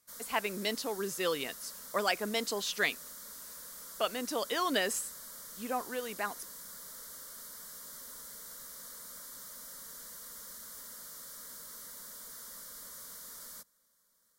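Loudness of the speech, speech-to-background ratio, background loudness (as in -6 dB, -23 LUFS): -34.0 LUFS, 10.5 dB, -44.5 LUFS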